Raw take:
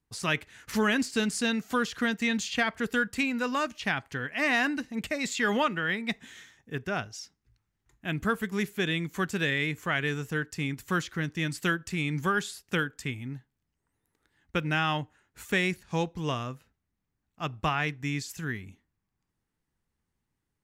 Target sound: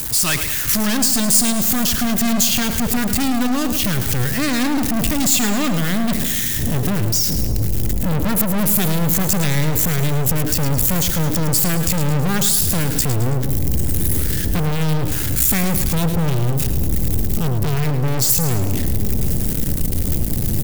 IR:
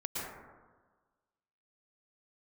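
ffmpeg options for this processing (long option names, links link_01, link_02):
-af "aeval=exprs='val(0)+0.5*0.0211*sgn(val(0))':channel_layout=same,asubboost=boost=11.5:cutoff=250,aeval=exprs='(tanh(22.4*val(0)+0.6)-tanh(0.6))/22.4':channel_layout=same,aemphasis=mode=production:type=75fm,aecho=1:1:108|216|324|432|540|648:0.316|0.164|0.0855|0.0445|0.0231|0.012,volume=9dB"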